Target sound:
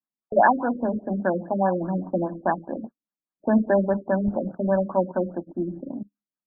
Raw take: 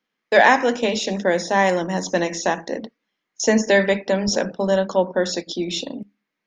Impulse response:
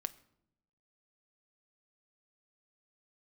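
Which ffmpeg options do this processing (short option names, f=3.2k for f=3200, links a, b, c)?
-af "agate=range=-17dB:threshold=-36dB:ratio=16:detection=peak,equalizer=f=460:t=o:w=0.37:g=-13.5,afftfilt=real='re*lt(b*sr/1024,540*pow(1800/540,0.5+0.5*sin(2*PI*4.9*pts/sr)))':imag='im*lt(b*sr/1024,540*pow(1800/540,0.5+0.5*sin(2*PI*4.9*pts/sr)))':win_size=1024:overlap=0.75"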